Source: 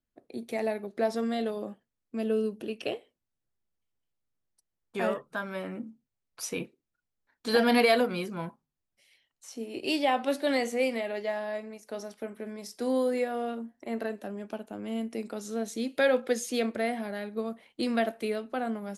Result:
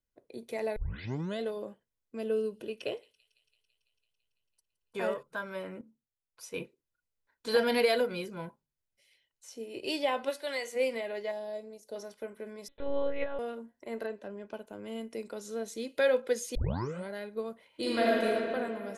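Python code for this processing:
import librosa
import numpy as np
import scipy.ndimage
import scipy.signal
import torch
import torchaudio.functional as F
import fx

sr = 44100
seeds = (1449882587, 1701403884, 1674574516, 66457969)

y = fx.echo_wet_highpass(x, sr, ms=167, feedback_pct=75, hz=4000.0, wet_db=-18.0, at=(2.25, 5.23))
y = fx.peak_eq(y, sr, hz=1100.0, db=-5.5, octaves=0.46, at=(7.65, 9.75))
y = fx.highpass(y, sr, hz=1000.0, slope=6, at=(10.29, 10.75), fade=0.02)
y = fx.band_shelf(y, sr, hz=1600.0, db=-11.0, octaves=1.7, at=(11.31, 11.96))
y = fx.lpc_monotone(y, sr, seeds[0], pitch_hz=280.0, order=10, at=(12.68, 13.39))
y = fx.air_absorb(y, sr, metres=86.0, at=(14.06, 14.54))
y = fx.reverb_throw(y, sr, start_s=17.67, length_s=0.57, rt60_s=2.8, drr_db=-7.0)
y = fx.edit(y, sr, fx.tape_start(start_s=0.76, length_s=0.64),
    fx.clip_gain(start_s=5.81, length_s=0.73, db=-7.5),
    fx.tape_start(start_s=16.55, length_s=0.55), tone=tone)
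y = y + 0.42 * np.pad(y, (int(2.0 * sr / 1000.0), 0))[:len(y)]
y = y * 10.0 ** (-4.0 / 20.0)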